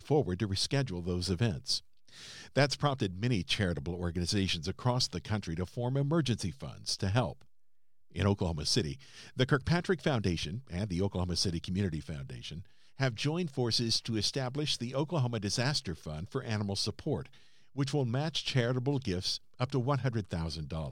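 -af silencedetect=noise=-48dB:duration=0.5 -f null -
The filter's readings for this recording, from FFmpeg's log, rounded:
silence_start: 7.42
silence_end: 8.12 | silence_duration: 0.70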